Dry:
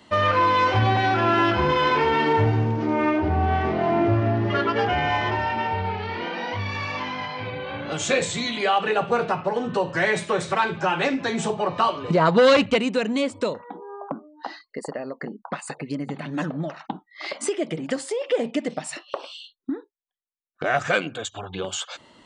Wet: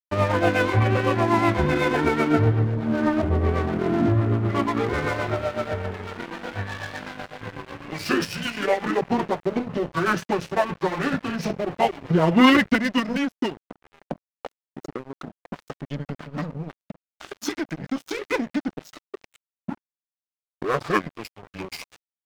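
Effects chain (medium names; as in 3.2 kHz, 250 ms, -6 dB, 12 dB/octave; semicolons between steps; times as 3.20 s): rotary cabinet horn 8 Hz; formant shift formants -6 st; crossover distortion -34.5 dBFS; trim +4 dB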